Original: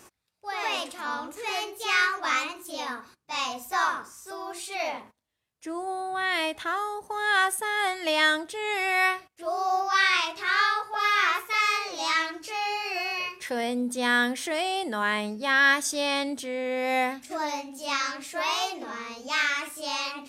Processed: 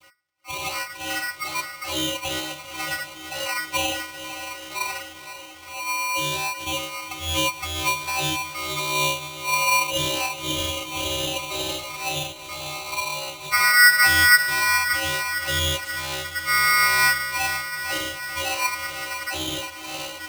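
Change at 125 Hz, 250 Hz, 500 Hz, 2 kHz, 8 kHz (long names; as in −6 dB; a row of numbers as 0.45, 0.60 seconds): can't be measured, −2.0 dB, −1.5 dB, +4.5 dB, +10.0 dB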